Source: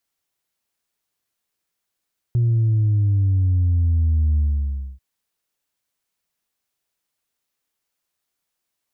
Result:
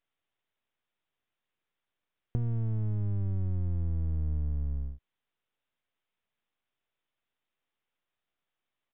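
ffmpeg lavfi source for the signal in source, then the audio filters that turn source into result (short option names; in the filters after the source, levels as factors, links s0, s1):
-f lavfi -i "aevalsrc='0.178*clip((2.64-t)/0.61,0,1)*tanh(1.06*sin(2*PI*120*2.64/log(65/120)*(exp(log(65/120)*t/2.64)-1)))/tanh(1.06)':d=2.64:s=44100"
-af "aeval=exprs='if(lt(val(0),0),0.251*val(0),val(0))':c=same,acompressor=threshold=0.0447:ratio=6,aresample=8000,aresample=44100"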